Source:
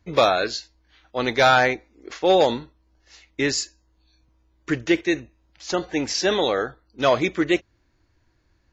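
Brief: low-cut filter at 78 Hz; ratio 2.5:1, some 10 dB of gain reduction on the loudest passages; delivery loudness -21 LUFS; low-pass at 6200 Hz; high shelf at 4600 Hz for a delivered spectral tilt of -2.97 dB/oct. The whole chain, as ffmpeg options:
-af "highpass=78,lowpass=6.2k,highshelf=f=4.6k:g=-6,acompressor=threshold=-28dB:ratio=2.5,volume=9.5dB"

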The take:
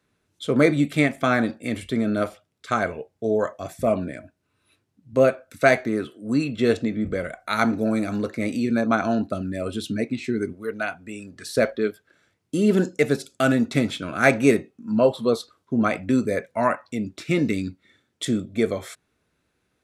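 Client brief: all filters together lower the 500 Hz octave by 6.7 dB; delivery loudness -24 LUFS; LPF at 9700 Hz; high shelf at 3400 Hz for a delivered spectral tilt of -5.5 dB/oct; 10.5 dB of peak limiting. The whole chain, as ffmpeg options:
-af "lowpass=9.7k,equalizer=f=500:t=o:g=-8.5,highshelf=f=3.4k:g=-3,volume=4.5dB,alimiter=limit=-11dB:level=0:latency=1"

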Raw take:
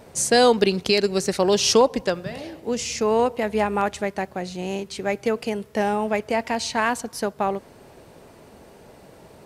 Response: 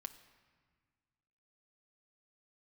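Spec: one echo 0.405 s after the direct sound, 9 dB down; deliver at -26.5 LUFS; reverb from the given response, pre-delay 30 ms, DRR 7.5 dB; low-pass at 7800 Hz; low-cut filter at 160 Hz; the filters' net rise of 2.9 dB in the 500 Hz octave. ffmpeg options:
-filter_complex "[0:a]highpass=160,lowpass=7.8k,equalizer=f=500:t=o:g=3.5,aecho=1:1:405:0.355,asplit=2[a][b];[1:a]atrim=start_sample=2205,adelay=30[c];[b][c]afir=irnorm=-1:irlink=0,volume=-3.5dB[d];[a][d]amix=inputs=2:normalize=0,volume=-6.5dB"

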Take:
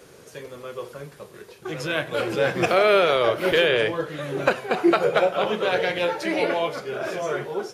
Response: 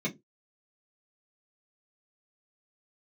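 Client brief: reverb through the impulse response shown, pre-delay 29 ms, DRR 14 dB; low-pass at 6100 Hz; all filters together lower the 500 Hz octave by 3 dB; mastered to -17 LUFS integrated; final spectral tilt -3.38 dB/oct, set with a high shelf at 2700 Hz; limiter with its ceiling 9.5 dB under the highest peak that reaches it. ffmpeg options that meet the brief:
-filter_complex "[0:a]lowpass=6.1k,equalizer=f=500:t=o:g=-3.5,highshelf=f=2.7k:g=-4,alimiter=limit=-16dB:level=0:latency=1,asplit=2[a][b];[1:a]atrim=start_sample=2205,adelay=29[c];[b][c]afir=irnorm=-1:irlink=0,volume=-19.5dB[d];[a][d]amix=inputs=2:normalize=0,volume=10dB"

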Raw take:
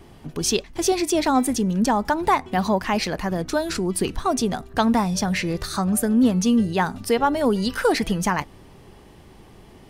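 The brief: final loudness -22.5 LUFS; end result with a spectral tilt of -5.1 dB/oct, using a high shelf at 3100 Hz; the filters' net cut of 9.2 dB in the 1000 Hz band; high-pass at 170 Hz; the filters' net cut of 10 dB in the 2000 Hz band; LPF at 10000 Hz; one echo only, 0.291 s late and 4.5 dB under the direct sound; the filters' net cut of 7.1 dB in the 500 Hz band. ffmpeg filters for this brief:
-af "highpass=170,lowpass=10k,equalizer=f=500:t=o:g=-7,equalizer=f=1k:t=o:g=-7,equalizer=f=2k:t=o:g=-8.5,highshelf=f=3.1k:g=-5,aecho=1:1:291:0.596,volume=3dB"

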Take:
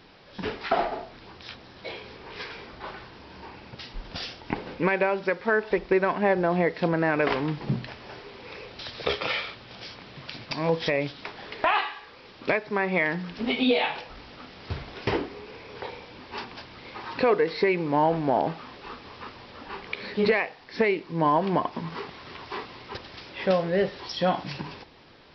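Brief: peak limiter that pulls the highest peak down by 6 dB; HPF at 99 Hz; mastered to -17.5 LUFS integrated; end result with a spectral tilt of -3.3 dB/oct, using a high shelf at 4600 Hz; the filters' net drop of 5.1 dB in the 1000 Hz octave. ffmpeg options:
-af "highpass=99,equalizer=f=1k:t=o:g=-7,highshelf=f=4.6k:g=7.5,volume=13dB,alimiter=limit=-4dB:level=0:latency=1"

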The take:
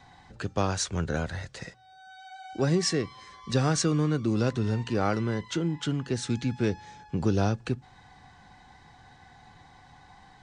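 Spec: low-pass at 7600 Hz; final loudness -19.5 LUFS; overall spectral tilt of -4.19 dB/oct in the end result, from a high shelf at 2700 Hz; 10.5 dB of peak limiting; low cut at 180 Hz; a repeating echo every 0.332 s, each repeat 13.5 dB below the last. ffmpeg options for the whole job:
-af "highpass=180,lowpass=7.6k,highshelf=f=2.7k:g=8,alimiter=limit=-19dB:level=0:latency=1,aecho=1:1:332|664:0.211|0.0444,volume=11.5dB"

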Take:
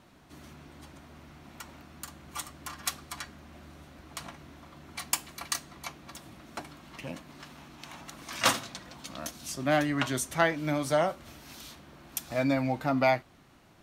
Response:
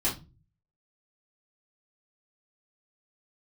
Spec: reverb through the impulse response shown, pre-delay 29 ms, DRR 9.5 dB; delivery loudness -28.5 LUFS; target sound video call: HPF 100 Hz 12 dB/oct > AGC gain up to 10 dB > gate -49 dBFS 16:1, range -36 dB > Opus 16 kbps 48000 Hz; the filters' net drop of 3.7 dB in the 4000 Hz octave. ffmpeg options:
-filter_complex "[0:a]equalizer=f=4k:t=o:g=-5,asplit=2[a][b];[1:a]atrim=start_sample=2205,adelay=29[c];[b][c]afir=irnorm=-1:irlink=0,volume=-17.5dB[d];[a][d]amix=inputs=2:normalize=0,highpass=100,dynaudnorm=m=10dB,agate=range=-36dB:threshold=-49dB:ratio=16,volume=3dB" -ar 48000 -c:a libopus -b:a 16k

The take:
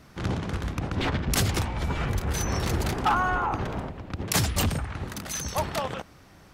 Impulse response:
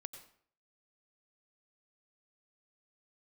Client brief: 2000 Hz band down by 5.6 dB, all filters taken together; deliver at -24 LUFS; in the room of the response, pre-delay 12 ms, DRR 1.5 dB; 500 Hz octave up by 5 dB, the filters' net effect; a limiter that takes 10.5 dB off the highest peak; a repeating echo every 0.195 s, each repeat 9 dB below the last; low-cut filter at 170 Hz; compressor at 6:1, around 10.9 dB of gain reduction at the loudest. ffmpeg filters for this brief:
-filter_complex "[0:a]highpass=170,equalizer=f=500:t=o:g=7,equalizer=f=2k:t=o:g=-9,acompressor=threshold=-32dB:ratio=6,alimiter=level_in=6dB:limit=-24dB:level=0:latency=1,volume=-6dB,aecho=1:1:195|390|585|780:0.355|0.124|0.0435|0.0152,asplit=2[a][b];[1:a]atrim=start_sample=2205,adelay=12[c];[b][c]afir=irnorm=-1:irlink=0,volume=2.5dB[d];[a][d]amix=inputs=2:normalize=0,volume=12.5dB"

